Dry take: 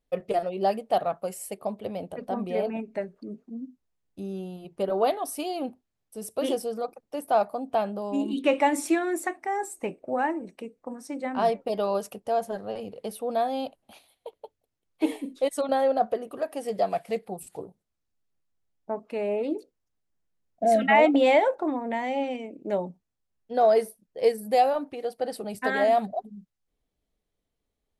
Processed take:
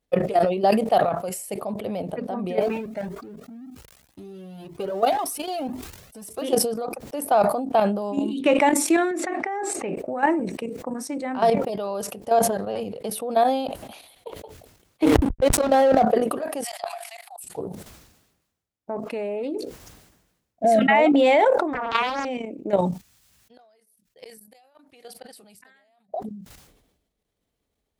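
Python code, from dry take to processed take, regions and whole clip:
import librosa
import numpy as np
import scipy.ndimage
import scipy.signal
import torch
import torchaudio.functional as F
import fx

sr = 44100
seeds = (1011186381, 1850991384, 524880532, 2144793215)

y = fx.chain(x, sr, fx.law_mismatch(coded='mu'),
    fx.comb_cascade(direction='rising', hz=1.9), at=(2.61, 6.42))
y = fx.chain(y, sr, fx.bandpass_edges(low_hz=180.0, high_hz=3800.0),
    fx.notch(hz=990.0, q=8.8),
    fx.sustainer(db_per_s=65.0), at=(9.11, 9.96))
y = fx.chain(y, sr, fx.backlash(play_db=-29.0),
    fx.sustainer(db_per_s=28.0), at=(15.03, 16.03))
y = fx.chain(y, sr, fx.steep_highpass(hz=670.0, slope=96),
    fx.high_shelf(hz=2700.0, db=8.5),
    fx.level_steps(step_db=22), at=(16.64, 17.44))
y = fx.chain(y, sr, fx.highpass(hz=400.0, slope=6),
    fx.peak_eq(hz=1300.0, db=9.0, octaves=2.2),
    fx.doppler_dist(depth_ms=0.9), at=(21.73, 22.25))
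y = fx.chain(y, sr, fx.tone_stack(knobs='5-5-5'),
    fx.gate_flip(shuts_db=-35.0, range_db=-28), at=(22.77, 26.14))
y = fx.level_steps(y, sr, step_db=12)
y = scipy.signal.sosfilt(scipy.signal.butter(2, 40.0, 'highpass', fs=sr, output='sos'), y)
y = fx.sustainer(y, sr, db_per_s=56.0)
y = y * 10.0 ** (8.0 / 20.0)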